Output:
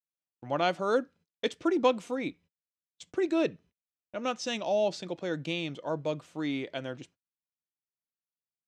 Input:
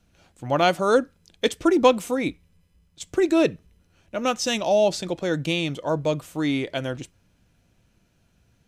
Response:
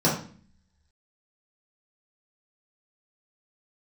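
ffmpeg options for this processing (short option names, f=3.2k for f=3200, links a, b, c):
-af "highpass=140,lowpass=5.7k,agate=range=-39dB:threshold=-47dB:ratio=16:detection=peak,volume=-8dB"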